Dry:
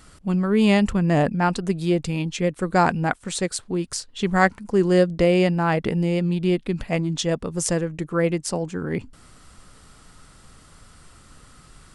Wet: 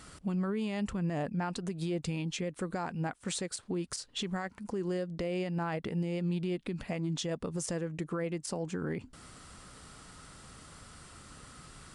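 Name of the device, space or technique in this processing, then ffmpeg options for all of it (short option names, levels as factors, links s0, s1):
podcast mastering chain: -af "highpass=f=70:p=1,deesser=0.45,acompressor=threshold=0.0355:ratio=2.5,alimiter=level_in=1.19:limit=0.0631:level=0:latency=1:release=135,volume=0.841" -ar 24000 -c:a libmp3lame -b:a 96k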